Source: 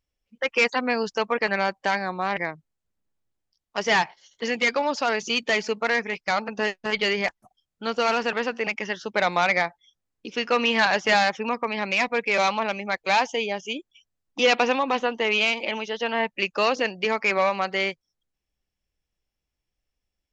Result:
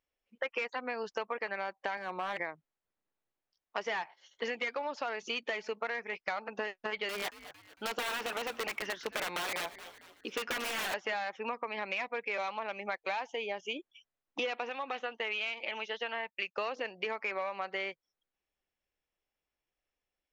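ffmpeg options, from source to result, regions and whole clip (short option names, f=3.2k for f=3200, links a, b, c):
-filter_complex "[0:a]asettb=1/sr,asplit=3[a][b][c];[a]atrim=end=1.974[d];[b]atrim=start=1.97:end=2.4,asetpts=PTS-STARTPTS,afade=t=in:d=0.004:c=qsin,afade=t=out:st=0.426:d=0.004:c=qsin,highpass=110,volume=23dB,asoftclip=hard,volume=-23dB,bandreject=f=780:w=20[e];[c]atrim=start=2.396[f];[d][e]acrossfade=d=0.004:c1=hsin:c2=qsin[g];[g][f]acrossfade=d=0.004:c1=qsin:c2=hsin,asettb=1/sr,asplit=3[h][i][j];[h]atrim=end=7.094[k];[i]atrim=start=7.09:end=10.94,asetpts=PTS-STARTPTS,afade=t=in:d=0.004:c=qsin,afade=t=out:st=3.846:d=0.004:c=qsin,highshelf=f=5.4k:g=6,aeval=exprs='(mod(7.94*val(0)+1,2)-1)/7.94':c=same,asplit=4[l][m][n][o];[m]adelay=226,afreqshift=-150,volume=-20dB[p];[n]adelay=452,afreqshift=-300,volume=-27.3dB[q];[o]adelay=678,afreqshift=-450,volume=-34.7dB[r];[l][p][q][r]amix=inputs=4:normalize=0,atrim=end_sample=169785[s];[j]atrim=start=10.936[t];[k][s]acrossfade=d=0.004:c1=hsin:c2=qsin[u];[u][t]acrossfade=d=0.004:c1=qsin:c2=hsin,asettb=1/sr,asplit=3[v][w][x];[v]atrim=end=14.694[y];[w]atrim=start=14.69:end=16.58,asetpts=PTS-STARTPTS,afade=t=in:d=0.004:c=qsin,afade=t=out:st=1.886:d=0.004:c=qsin,agate=range=-33dB:threshold=-34dB:ratio=3:release=100:detection=peak,equalizer=f=310:w=0.41:g=-7,bandreject=f=1k:w=8.1[z];[x]atrim=start=16.576[aa];[y][z]acrossfade=d=0.004:c1=hsin:c2=qsin[ab];[ab][aa]acrossfade=d=0.004:c1=qsin:c2=hsin,bass=f=250:g=-14,treble=f=4k:g=-11,bandreject=f=4.8k:w=30,acompressor=threshold=-32dB:ratio=10"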